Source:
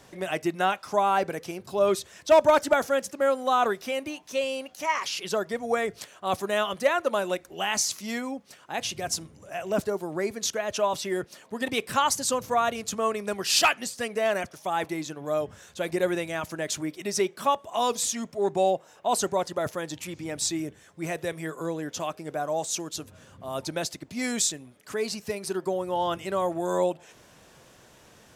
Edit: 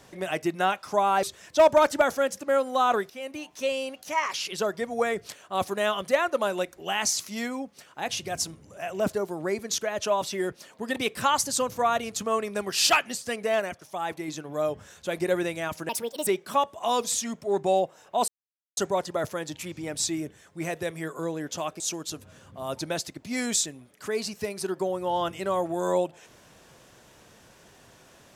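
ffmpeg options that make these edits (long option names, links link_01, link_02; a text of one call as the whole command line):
ffmpeg -i in.wav -filter_complex "[0:a]asplit=9[link_01][link_02][link_03][link_04][link_05][link_06][link_07][link_08][link_09];[link_01]atrim=end=1.232[link_10];[link_02]atrim=start=1.948:end=3.82,asetpts=PTS-STARTPTS,afade=type=out:start_time=1.868:duration=0.004:curve=hsin:silence=0.199526[link_11];[link_03]atrim=start=3.82:end=14.322,asetpts=PTS-STARTPTS,afade=type=in:duration=0.39:silence=0.199526[link_12];[link_04]atrim=start=14.318:end=15.002,asetpts=PTS-STARTPTS,volume=-3.5dB[link_13];[link_05]atrim=start=14.998:end=16.614[link_14];[link_06]atrim=start=16.61:end=17.18,asetpts=PTS-STARTPTS,asetrate=66150,aresample=44100[link_15];[link_07]atrim=start=17.176:end=19.19,asetpts=PTS-STARTPTS,afade=type=out:start_time=2.01:duration=0.004:curve=hsin,apad=pad_dur=0.49[link_16];[link_08]atrim=start=19.19:end=22.222,asetpts=PTS-STARTPTS,afade=type=in:duration=0.004:curve=hsin[link_17];[link_09]atrim=start=22.658[link_18];[link_11][link_12]concat=n=2:v=0:a=1[link_19];[link_10][link_19]acrossfade=duration=0.004:curve1=hsin:curve2=hsin[link_20];[link_20][link_13]acrossfade=duration=0.004:curve1=hsin:curve2=hsin[link_21];[link_21][link_14]acrossfade=duration=0.004:curve1=hsin:curve2=hsin[link_22];[link_22][link_15]acrossfade=duration=0.004:curve1=hsin:curve2=hsin[link_23];[link_16][link_17]concat=n=2:v=0:a=1[link_24];[link_23][link_24]acrossfade=duration=0.004:curve1=hsin:curve2=hsin[link_25];[link_25][link_18]acrossfade=duration=0.004:curve1=hsin:curve2=hsin" out.wav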